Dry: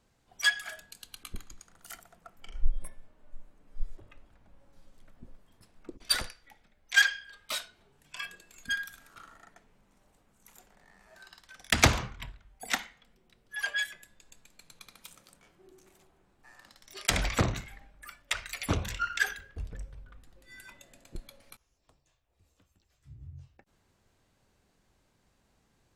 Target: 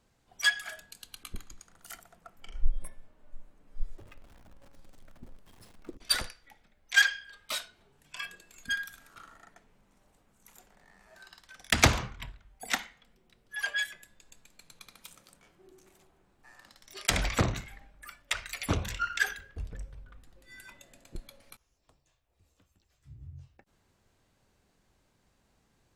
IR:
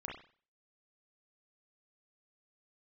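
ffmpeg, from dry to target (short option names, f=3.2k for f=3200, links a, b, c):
-filter_complex "[0:a]asettb=1/sr,asplit=3[a][b][c];[a]atrim=end=3.974[d];[b]atrim=start=3.97:end=5.97,asetpts=PTS-STARTPTS,afade=t=in:d=0.004:c=qsin,afade=t=out:st=1.996:d=0.004:c=qsin,aeval=exprs='val(0)+0.5*0.00211*sgn(val(0))':c=same[e];[c]atrim=start=5.966[f];[d][e]acrossfade=d=0.004:c1=hsin:c2=qsin[g];[g][f]acrossfade=d=0.004:c1=qsin:c2=hsin"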